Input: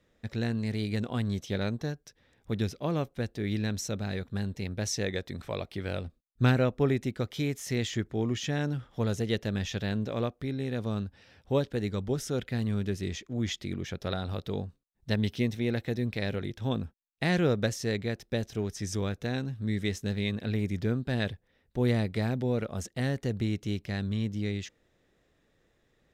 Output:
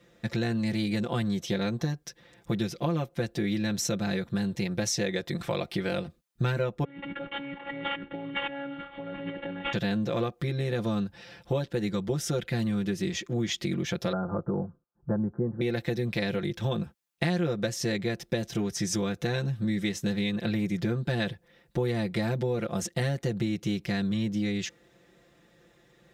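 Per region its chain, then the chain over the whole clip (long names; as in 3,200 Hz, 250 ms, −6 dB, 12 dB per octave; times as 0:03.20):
0:06.84–0:09.73: variable-slope delta modulation 16 kbit/s + compressor whose output falls as the input rises −38 dBFS + phases set to zero 280 Hz
0:14.12–0:15.61: Butterworth low-pass 1,500 Hz 72 dB per octave + notch filter 700 Hz, Q 19
whole clip: high-pass filter 66 Hz; comb filter 5.8 ms, depth 98%; downward compressor 5 to 1, threshold −33 dBFS; level +7 dB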